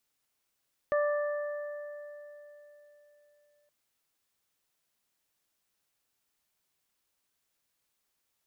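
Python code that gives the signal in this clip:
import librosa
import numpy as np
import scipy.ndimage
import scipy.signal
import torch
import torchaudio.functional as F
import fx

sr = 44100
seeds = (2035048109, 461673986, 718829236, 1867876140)

y = fx.additive(sr, length_s=2.77, hz=588.0, level_db=-24.0, upper_db=(-9.0, -11), decay_s=3.74, upper_decays_s=(2.35, 3.43))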